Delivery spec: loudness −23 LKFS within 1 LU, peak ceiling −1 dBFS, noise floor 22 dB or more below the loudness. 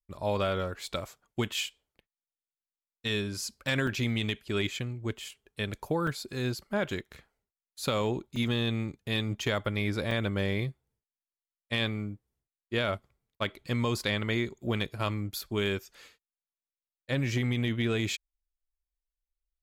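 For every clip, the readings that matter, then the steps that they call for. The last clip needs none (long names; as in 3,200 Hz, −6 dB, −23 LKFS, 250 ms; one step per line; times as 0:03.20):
number of dropouts 4; longest dropout 3.3 ms; integrated loudness −32.0 LKFS; sample peak −16.5 dBFS; target loudness −23.0 LKFS
→ repair the gap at 0:03.87/0:06.07/0:08.36/0:10.11, 3.3 ms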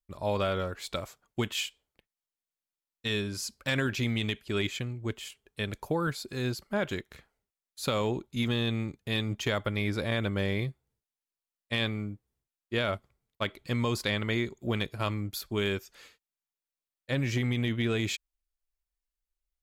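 number of dropouts 0; integrated loudness −31.5 LKFS; sample peak −16.5 dBFS; target loudness −23.0 LKFS
→ level +8.5 dB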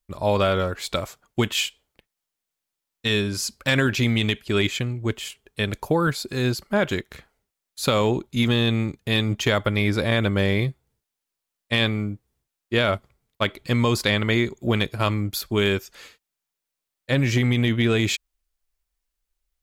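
integrated loudness −23.0 LKFS; sample peak −8.0 dBFS; background noise floor −84 dBFS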